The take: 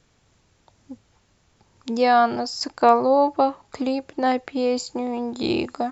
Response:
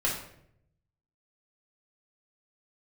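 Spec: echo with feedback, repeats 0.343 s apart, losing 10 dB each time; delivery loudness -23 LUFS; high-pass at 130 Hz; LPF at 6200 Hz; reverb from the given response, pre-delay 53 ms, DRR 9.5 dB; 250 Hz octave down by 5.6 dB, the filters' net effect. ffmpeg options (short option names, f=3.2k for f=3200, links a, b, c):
-filter_complex "[0:a]highpass=130,lowpass=6.2k,equalizer=f=250:t=o:g=-6,aecho=1:1:343|686|1029|1372:0.316|0.101|0.0324|0.0104,asplit=2[a][b];[1:a]atrim=start_sample=2205,adelay=53[c];[b][c]afir=irnorm=-1:irlink=0,volume=-18.5dB[d];[a][d]amix=inputs=2:normalize=0,volume=-1dB"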